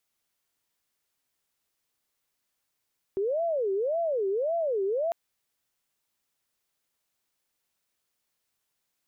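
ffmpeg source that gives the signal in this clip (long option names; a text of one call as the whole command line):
ffmpeg -f lavfi -i "aevalsrc='0.0596*sin(2*PI*(531.5*t-147.5/(2*PI*1.8)*sin(2*PI*1.8*t)))':duration=1.95:sample_rate=44100" out.wav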